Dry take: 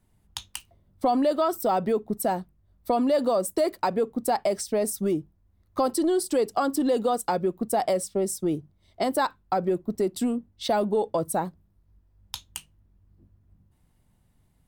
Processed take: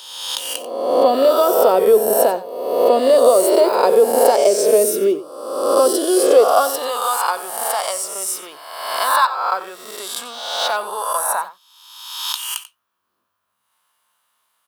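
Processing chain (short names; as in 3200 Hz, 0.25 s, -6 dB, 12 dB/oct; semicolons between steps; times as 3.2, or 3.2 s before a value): spectral swells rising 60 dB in 1.21 s; high shelf 12000 Hz +10 dB; high-pass sweep 420 Hz -> 1100 Hz, 6.28–6.99; thirty-one-band EQ 160 Hz -6 dB, 315 Hz -9 dB, 800 Hz -7 dB, 2000 Hz -7 dB, 3150 Hz +4 dB, 8000 Hz -4 dB, 16000 Hz -9 dB; on a send: echo 90 ms -15 dB; on the sum: gain +5.5 dB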